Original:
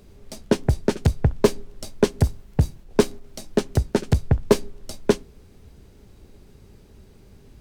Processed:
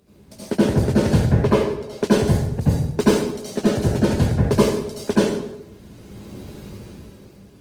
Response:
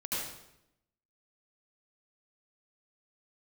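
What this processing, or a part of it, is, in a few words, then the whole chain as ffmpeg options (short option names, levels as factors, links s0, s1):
far-field microphone of a smart speaker: -filter_complex "[0:a]asettb=1/sr,asplit=3[s0][s1][s2];[s0]atrim=end=1.304[s3];[s1]atrim=start=1.3:end=1.93,asetpts=PTS-STARTPTS,afade=t=in:d=0.004:c=qsin,afade=t=out:st=0.626:d=0.004:c=qsin,bass=f=250:g=-7,treble=f=4000:g=-13[s4];[s2]atrim=start=1.926[s5];[s3][s4]acrossfade=d=0.004:c1=hsin:c2=qsin[s6];[s6][s5]acrossfade=d=0.004:c1=qsin:c2=hsin[s7];[1:a]atrim=start_sample=2205[s8];[s7][s8]afir=irnorm=-1:irlink=0,highpass=90,dynaudnorm=f=130:g=13:m=4.47,volume=0.891" -ar 48000 -c:a libopus -b:a 20k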